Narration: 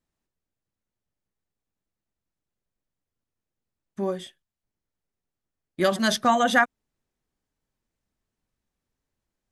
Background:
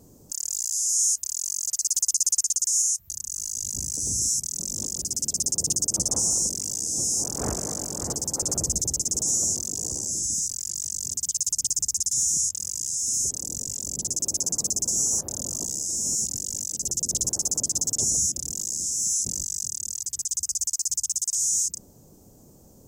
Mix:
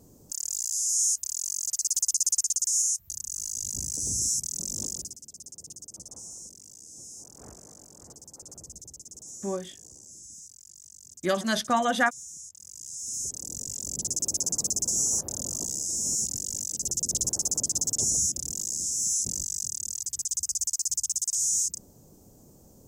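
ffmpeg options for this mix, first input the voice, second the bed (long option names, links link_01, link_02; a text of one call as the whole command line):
ffmpeg -i stem1.wav -i stem2.wav -filter_complex "[0:a]adelay=5450,volume=-4dB[link_01];[1:a]volume=15dB,afade=type=out:start_time=4.89:duration=0.28:silence=0.141254,afade=type=in:start_time=12.53:duration=1.5:silence=0.133352[link_02];[link_01][link_02]amix=inputs=2:normalize=0" out.wav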